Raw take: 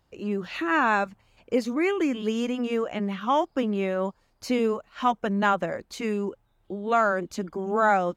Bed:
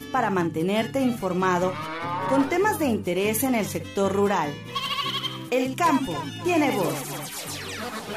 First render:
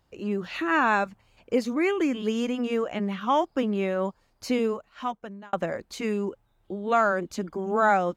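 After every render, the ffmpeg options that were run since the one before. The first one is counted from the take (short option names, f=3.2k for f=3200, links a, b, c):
-filter_complex "[0:a]asplit=2[a][b];[a]atrim=end=5.53,asetpts=PTS-STARTPTS,afade=t=out:st=4.49:d=1.04[c];[b]atrim=start=5.53,asetpts=PTS-STARTPTS,afade=t=in:d=0.004:c=hsin[d];[c][d]concat=n=2:v=0:a=1"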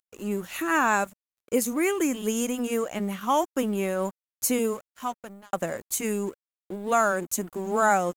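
-af "aexciter=amount=15:drive=3.5:freq=6.8k,aeval=exprs='sgn(val(0))*max(abs(val(0))-0.00473,0)':c=same"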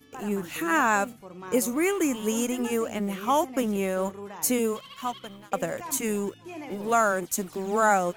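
-filter_complex "[1:a]volume=-18dB[a];[0:a][a]amix=inputs=2:normalize=0"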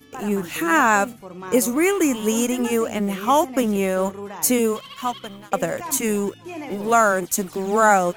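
-af "volume=6dB"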